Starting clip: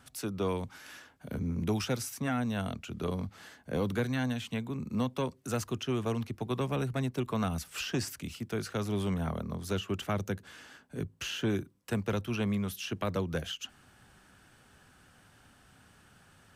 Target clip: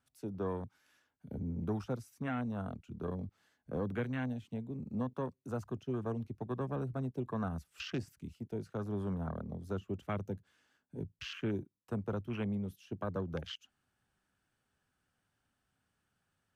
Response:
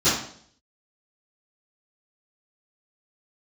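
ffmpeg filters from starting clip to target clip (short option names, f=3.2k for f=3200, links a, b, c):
-af "afwtdn=0.0112,volume=-5dB"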